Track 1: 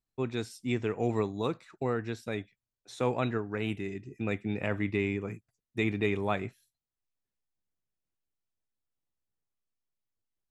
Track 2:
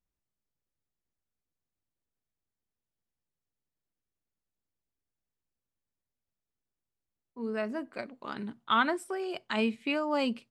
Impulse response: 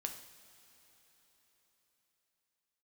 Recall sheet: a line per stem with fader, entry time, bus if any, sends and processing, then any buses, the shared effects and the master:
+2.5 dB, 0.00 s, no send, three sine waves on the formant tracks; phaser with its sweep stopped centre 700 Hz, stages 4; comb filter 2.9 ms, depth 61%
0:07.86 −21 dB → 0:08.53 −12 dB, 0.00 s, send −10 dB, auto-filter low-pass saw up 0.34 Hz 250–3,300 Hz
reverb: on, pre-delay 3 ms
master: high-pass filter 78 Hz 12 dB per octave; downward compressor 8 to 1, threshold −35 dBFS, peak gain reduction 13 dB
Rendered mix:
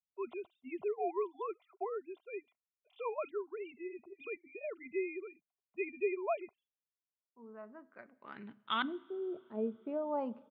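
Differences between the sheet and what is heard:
stem 1 +2.5 dB → −3.5 dB
master: missing downward compressor 8 to 1, threshold −35 dBFS, peak gain reduction 13 dB

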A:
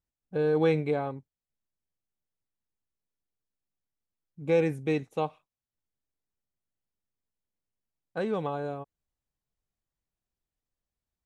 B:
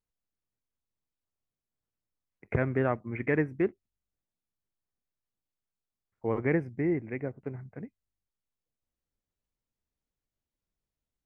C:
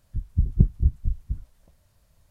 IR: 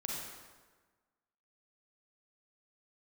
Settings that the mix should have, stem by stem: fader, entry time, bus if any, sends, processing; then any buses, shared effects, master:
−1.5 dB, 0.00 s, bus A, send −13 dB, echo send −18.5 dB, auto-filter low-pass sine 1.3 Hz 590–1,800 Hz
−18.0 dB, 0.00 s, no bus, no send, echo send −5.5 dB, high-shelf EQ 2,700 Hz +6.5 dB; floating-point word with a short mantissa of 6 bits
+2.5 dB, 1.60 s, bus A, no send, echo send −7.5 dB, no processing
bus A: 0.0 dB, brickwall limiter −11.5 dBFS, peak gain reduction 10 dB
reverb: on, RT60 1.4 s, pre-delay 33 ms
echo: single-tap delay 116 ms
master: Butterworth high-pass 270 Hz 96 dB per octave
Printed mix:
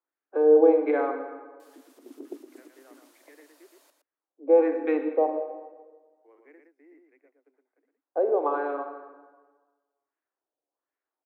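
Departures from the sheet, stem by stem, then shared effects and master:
stem A: send −13 dB → −2.5 dB
stem B −18.0 dB → −27.5 dB
stem C +2.5 dB → +8.5 dB

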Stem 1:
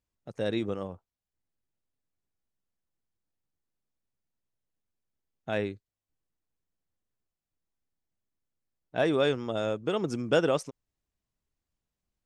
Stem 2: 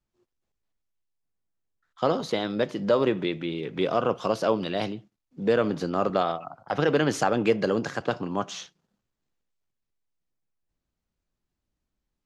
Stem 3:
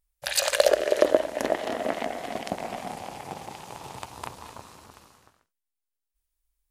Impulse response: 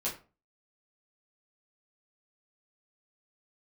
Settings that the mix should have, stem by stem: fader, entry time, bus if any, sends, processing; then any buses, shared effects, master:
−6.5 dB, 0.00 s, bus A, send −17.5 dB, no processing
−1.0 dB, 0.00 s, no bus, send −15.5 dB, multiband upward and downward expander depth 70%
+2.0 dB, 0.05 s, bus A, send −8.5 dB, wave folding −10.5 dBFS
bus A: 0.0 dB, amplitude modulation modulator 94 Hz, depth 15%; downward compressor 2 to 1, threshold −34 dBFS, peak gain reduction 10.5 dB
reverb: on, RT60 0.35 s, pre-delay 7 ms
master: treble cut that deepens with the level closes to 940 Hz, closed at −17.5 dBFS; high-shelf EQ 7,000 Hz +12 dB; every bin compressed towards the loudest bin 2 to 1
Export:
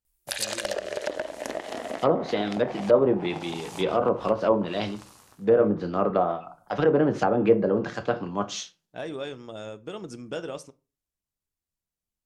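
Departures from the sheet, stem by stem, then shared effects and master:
stem 2: send −15.5 dB → −9 dB
stem 3: send off
master: missing every bin compressed towards the loudest bin 2 to 1

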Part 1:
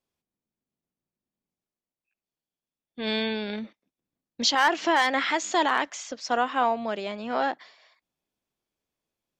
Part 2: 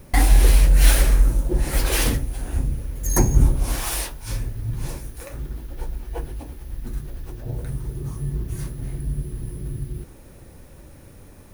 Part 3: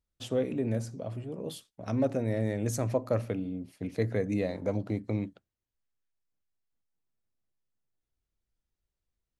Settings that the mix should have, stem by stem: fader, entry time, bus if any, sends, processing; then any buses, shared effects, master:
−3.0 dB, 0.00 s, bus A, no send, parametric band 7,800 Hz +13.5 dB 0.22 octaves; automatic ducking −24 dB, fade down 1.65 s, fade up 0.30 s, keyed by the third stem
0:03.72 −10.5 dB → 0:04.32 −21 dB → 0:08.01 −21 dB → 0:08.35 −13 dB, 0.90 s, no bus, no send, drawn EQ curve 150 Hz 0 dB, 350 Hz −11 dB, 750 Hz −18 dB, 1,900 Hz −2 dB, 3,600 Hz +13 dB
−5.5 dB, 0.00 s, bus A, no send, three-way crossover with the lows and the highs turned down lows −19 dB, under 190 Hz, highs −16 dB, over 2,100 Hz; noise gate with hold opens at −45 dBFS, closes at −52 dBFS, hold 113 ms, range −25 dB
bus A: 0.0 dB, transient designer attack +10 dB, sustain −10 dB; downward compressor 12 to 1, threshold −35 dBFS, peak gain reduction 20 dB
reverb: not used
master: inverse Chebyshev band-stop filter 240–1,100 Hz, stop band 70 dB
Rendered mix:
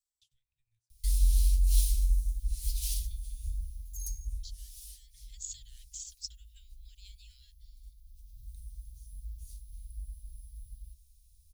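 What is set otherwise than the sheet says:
stem 2: missing drawn EQ curve 150 Hz 0 dB, 350 Hz −11 dB, 750 Hz −18 dB, 1,900 Hz −2 dB, 3,600 Hz +13 dB
stem 3 −5.5 dB → −16.5 dB

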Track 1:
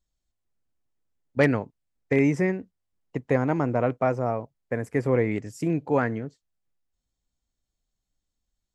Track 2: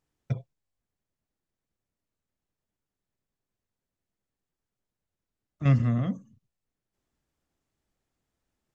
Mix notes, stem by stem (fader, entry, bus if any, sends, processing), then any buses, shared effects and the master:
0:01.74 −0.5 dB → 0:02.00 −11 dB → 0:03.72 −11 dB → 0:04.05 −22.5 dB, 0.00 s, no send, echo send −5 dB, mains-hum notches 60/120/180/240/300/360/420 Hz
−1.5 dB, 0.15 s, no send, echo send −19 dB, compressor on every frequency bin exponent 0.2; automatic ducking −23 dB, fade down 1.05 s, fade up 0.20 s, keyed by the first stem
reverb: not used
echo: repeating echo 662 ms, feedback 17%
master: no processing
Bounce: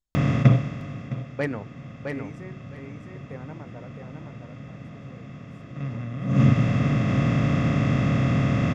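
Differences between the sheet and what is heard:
stem 1 −0.5 dB → −7.0 dB
stem 2 −1.5 dB → +10.0 dB

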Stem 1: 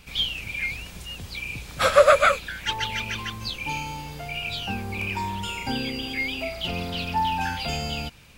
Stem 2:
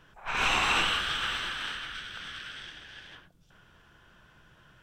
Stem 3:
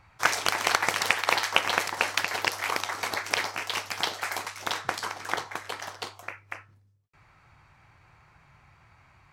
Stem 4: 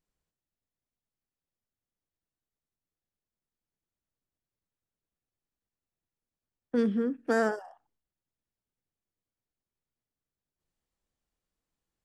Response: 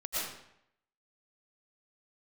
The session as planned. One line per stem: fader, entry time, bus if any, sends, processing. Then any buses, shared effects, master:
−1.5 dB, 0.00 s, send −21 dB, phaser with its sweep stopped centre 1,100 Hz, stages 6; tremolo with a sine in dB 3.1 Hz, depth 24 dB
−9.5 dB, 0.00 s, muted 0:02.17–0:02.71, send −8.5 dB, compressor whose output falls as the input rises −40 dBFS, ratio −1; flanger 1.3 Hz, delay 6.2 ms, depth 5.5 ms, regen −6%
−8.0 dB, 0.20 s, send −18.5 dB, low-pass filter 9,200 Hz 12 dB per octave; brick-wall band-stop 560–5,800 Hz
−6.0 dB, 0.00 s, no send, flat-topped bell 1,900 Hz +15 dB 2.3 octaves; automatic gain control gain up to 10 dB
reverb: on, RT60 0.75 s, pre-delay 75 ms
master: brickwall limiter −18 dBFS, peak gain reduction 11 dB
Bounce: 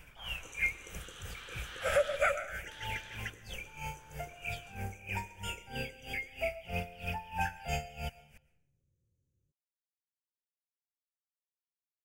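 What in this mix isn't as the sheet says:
stem 3 −8.0 dB → −18.5 dB
stem 4: muted

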